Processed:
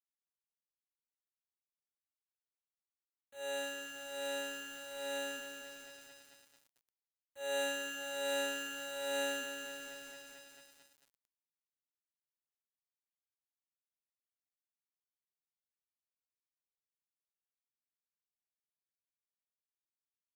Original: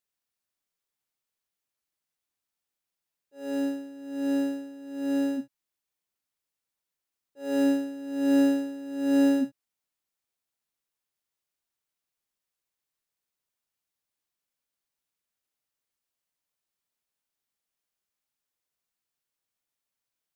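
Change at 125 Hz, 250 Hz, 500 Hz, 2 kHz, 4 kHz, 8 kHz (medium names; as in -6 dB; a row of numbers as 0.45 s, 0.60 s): no reading, -26.0 dB, -6.5 dB, +3.0 dB, +5.0 dB, +5.0 dB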